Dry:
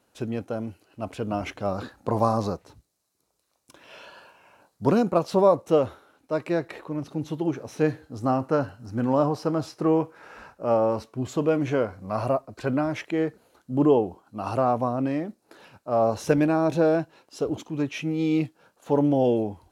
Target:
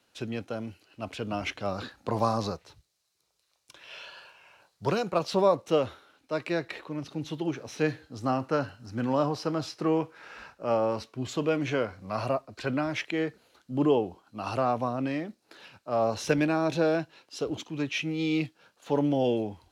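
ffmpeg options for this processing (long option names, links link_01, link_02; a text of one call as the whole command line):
ffmpeg -i in.wav -filter_complex "[0:a]asettb=1/sr,asplit=3[link_01][link_02][link_03];[link_01]atrim=end=2.514[link_04];[link_02]atrim=start=2.51:end=5.2,asetpts=PTS-STARTPTS,afade=type=in:duration=0.004:curve=qsin,afade=type=out:start_time=2.686:duration=0.004:curve=qsin,equalizer=frequency=250:width_type=o:width=0.42:gain=-13[link_05];[link_03]atrim=start=5.196[link_06];[link_04][link_05]acrossfade=duration=0.004:curve1=hsin:curve2=qsin[link_07];[link_07][link_06]acrossfade=duration=0.004:curve1=qsin:curve2=hsin,acrossover=split=150|990|4600[link_08][link_09][link_10][link_11];[link_10]crystalizer=i=7:c=0[link_12];[link_08][link_09][link_12][link_11]amix=inputs=4:normalize=0,volume=-4.5dB" out.wav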